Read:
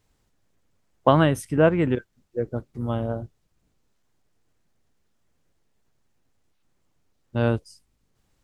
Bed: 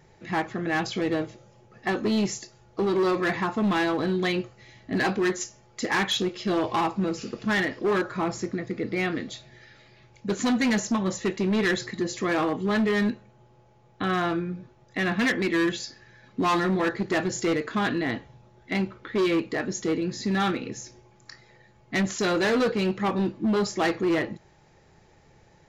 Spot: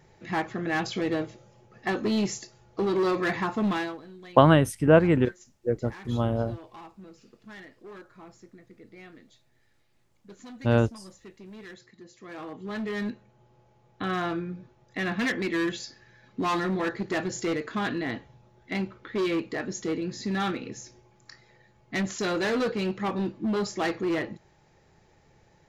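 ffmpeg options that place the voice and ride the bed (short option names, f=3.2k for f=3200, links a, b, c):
-filter_complex "[0:a]adelay=3300,volume=0.5dB[a];[1:a]volume=16dB,afade=t=out:st=3.66:d=0.35:silence=0.105925,afade=t=in:st=12.19:d=1.37:silence=0.133352[b];[a][b]amix=inputs=2:normalize=0"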